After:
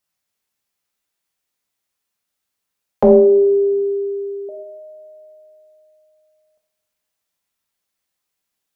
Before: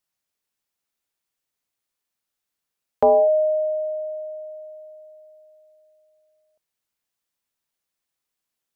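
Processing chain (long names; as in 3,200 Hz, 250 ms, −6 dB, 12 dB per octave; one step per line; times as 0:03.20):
0:03.03–0:04.49: frequency shifter −220 Hz
coupled-rooms reverb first 0.64 s, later 2.1 s, from −22 dB, DRR 1.5 dB
level +2.5 dB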